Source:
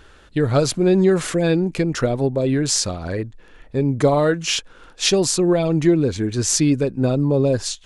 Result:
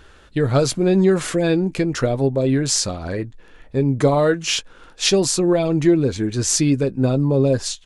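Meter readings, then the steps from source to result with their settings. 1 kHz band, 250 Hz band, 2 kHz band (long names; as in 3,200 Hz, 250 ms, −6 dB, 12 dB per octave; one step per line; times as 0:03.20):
0.0 dB, +0.5 dB, 0.0 dB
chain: double-tracking delay 15 ms −13 dB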